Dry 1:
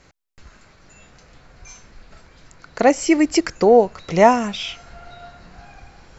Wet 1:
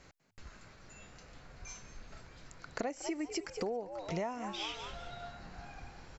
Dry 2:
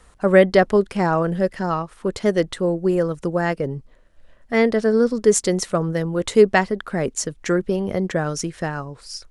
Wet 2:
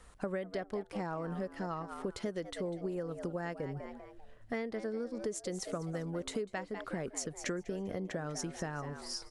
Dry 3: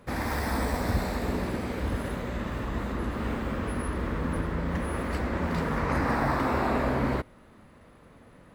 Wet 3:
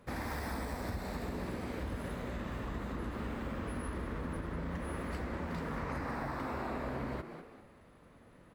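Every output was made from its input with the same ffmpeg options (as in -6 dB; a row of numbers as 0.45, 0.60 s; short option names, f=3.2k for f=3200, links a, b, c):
-filter_complex "[0:a]asplit=2[a][b];[b]asplit=3[c][d][e];[c]adelay=197,afreqshift=100,volume=-14.5dB[f];[d]adelay=394,afreqshift=200,volume=-23.4dB[g];[e]adelay=591,afreqshift=300,volume=-32.2dB[h];[f][g][h]amix=inputs=3:normalize=0[i];[a][i]amix=inputs=2:normalize=0,acompressor=threshold=-28dB:ratio=12,volume=-6dB"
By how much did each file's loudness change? -23.5, -18.5, -10.0 LU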